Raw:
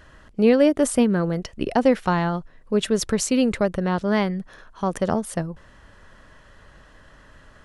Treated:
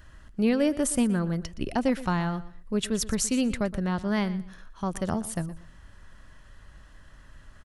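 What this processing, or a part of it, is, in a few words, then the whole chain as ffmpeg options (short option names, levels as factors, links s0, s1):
smiley-face EQ: -af "lowshelf=f=110:g=9,equalizer=f=470:t=o:w=0.23:g=-4,equalizer=f=540:t=o:w=1.6:g=-3.5,highshelf=f=7900:g=8.5,aecho=1:1:119|238:0.15|0.0344,volume=0.531"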